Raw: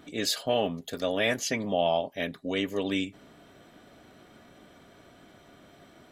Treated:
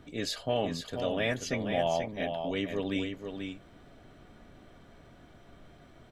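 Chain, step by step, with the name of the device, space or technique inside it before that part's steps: LPF 11000 Hz 12 dB/oct; car interior (bell 130 Hz +5 dB 0.63 oct; high shelf 4300 Hz -6 dB; brown noise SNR 23 dB); bell 91 Hz +4 dB 0.74 oct; echo 0.485 s -6.5 dB; gain -3.5 dB

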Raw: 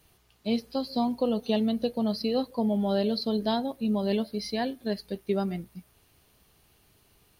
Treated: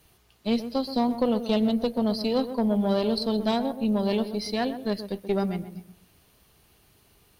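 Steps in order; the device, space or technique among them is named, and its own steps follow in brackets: rockabilly slapback (tube stage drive 19 dB, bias 0.5; tape echo 0.128 s, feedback 35%, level -9 dB, low-pass 1200 Hz); gain +4.5 dB

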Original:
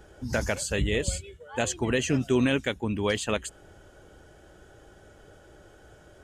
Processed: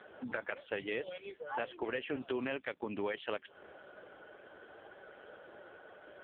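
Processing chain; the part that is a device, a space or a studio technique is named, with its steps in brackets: voicemail (BPF 440–3100 Hz; compressor 6:1, threshold -39 dBFS, peak gain reduction 14 dB; gain +6 dB; AMR-NB 5.15 kbps 8000 Hz)

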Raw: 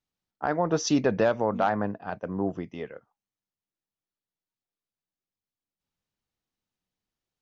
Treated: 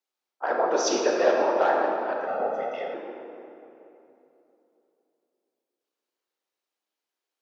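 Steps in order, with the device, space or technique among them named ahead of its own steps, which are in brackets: whispering ghost (whisperiser; HPF 360 Hz 24 dB/oct; reverb RT60 3.1 s, pre-delay 17 ms, DRR -1 dB); 2.27–2.94 comb 1.5 ms, depth 94%

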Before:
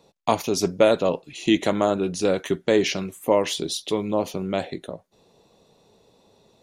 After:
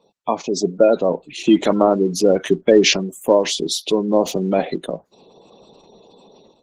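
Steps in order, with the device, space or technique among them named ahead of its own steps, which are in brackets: noise-suppressed video call (HPF 160 Hz 24 dB/oct; spectral gate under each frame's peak -20 dB strong; AGC gain up to 11.5 dB; Opus 16 kbps 48000 Hz)

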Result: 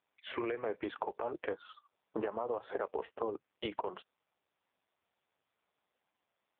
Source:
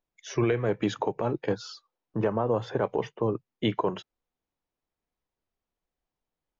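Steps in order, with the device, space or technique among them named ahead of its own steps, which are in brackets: voicemail (BPF 440–3000 Hz; compressor 10:1, threshold -38 dBFS, peak gain reduction 15 dB; gain +6.5 dB; AMR-NB 5.15 kbps 8000 Hz)

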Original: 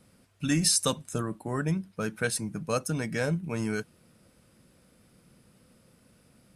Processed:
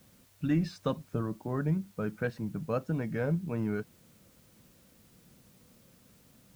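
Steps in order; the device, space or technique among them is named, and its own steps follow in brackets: cassette deck with a dirty head (tape spacing loss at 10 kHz 44 dB; wow and flutter; white noise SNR 30 dB)

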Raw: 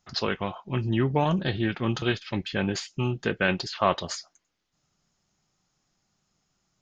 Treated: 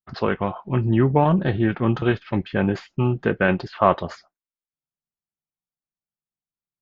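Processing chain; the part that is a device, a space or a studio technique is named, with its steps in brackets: hearing-loss simulation (LPF 1500 Hz 12 dB/oct; expander -48 dBFS); high shelf 4400 Hz +5.5 dB; gain +6.5 dB

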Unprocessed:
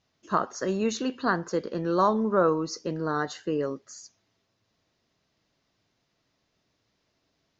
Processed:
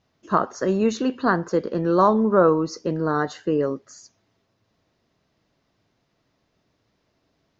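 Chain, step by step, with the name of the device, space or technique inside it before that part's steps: behind a face mask (high shelf 2100 Hz -8 dB); gain +6.5 dB

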